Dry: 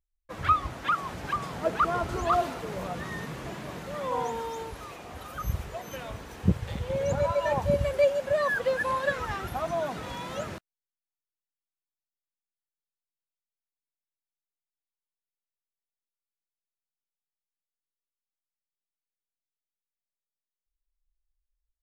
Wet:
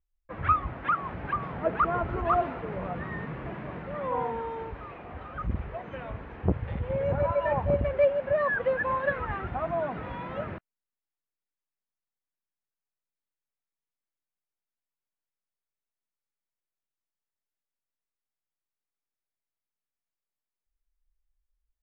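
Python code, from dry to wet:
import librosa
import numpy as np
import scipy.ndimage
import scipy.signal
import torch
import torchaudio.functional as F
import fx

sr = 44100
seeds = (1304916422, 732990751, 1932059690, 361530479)

y = scipy.signal.sosfilt(scipy.signal.butter(4, 2400.0, 'lowpass', fs=sr, output='sos'), x)
y = fx.low_shelf(y, sr, hz=150.0, db=3.5)
y = fx.transformer_sat(y, sr, knee_hz=350.0)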